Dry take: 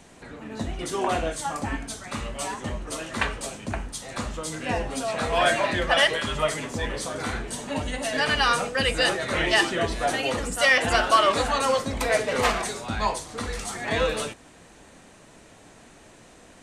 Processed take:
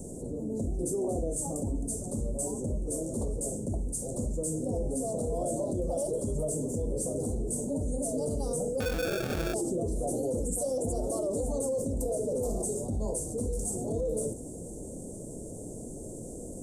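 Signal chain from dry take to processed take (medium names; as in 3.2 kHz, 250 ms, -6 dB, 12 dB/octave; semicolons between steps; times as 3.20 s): Chebyshev band-stop 510–7900 Hz, order 3; peak limiter -24.5 dBFS, peak gain reduction 9 dB; 8.80–9.54 s: sample-rate reducer 1 kHz, jitter 0%; level flattener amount 50%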